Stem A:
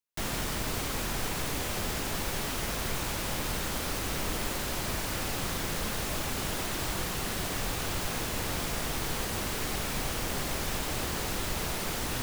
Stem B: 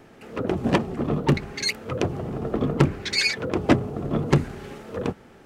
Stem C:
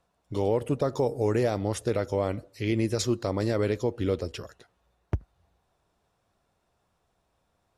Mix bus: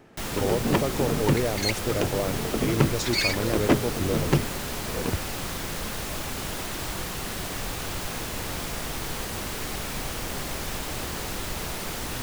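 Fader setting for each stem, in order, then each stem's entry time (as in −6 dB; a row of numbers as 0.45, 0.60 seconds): +0.5, −3.0, −1.5 decibels; 0.00, 0.00, 0.00 seconds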